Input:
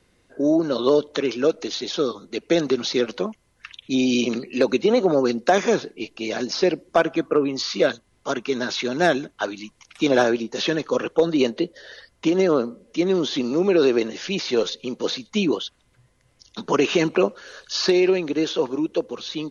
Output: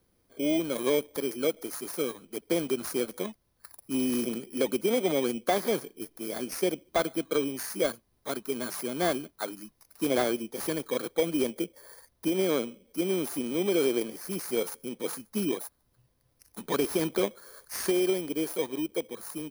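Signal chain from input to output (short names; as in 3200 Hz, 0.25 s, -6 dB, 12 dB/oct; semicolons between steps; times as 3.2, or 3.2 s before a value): FFT order left unsorted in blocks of 16 samples; slew limiter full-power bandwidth 590 Hz; gain -8 dB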